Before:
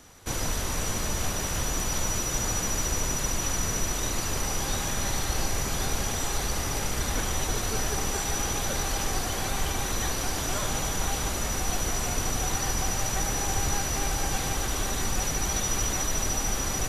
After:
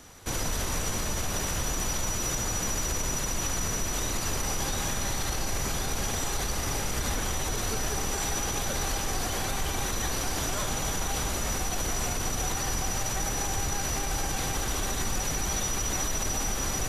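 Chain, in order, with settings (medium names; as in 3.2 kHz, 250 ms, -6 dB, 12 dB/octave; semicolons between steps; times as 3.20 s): peak limiter -22 dBFS, peak gain reduction 8 dB; trim +2 dB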